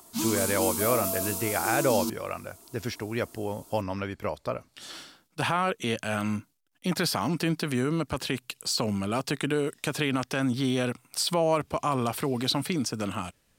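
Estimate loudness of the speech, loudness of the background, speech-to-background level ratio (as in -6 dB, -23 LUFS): -29.0 LUFS, -29.0 LUFS, 0.0 dB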